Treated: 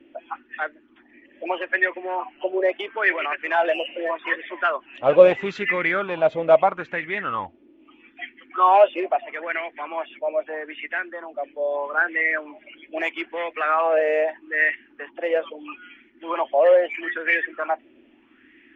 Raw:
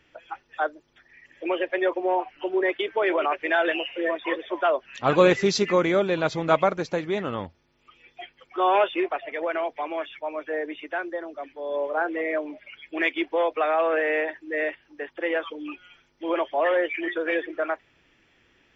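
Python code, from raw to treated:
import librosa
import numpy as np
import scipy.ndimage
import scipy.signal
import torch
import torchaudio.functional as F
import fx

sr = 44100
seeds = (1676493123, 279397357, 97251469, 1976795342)

p1 = fx.high_shelf_res(x, sr, hz=3800.0, db=-9.5, q=3.0)
p2 = fx.dmg_noise_band(p1, sr, seeds[0], low_hz=230.0, high_hz=360.0, level_db=-51.0)
p3 = 10.0 ** (-17.5 / 20.0) * np.tanh(p2 / 10.0 ** (-17.5 / 20.0))
p4 = p2 + (p3 * 10.0 ** (-9.5 / 20.0))
p5 = fx.bell_lfo(p4, sr, hz=0.78, low_hz=550.0, high_hz=2000.0, db=17)
y = p5 * 10.0 ** (-9.0 / 20.0)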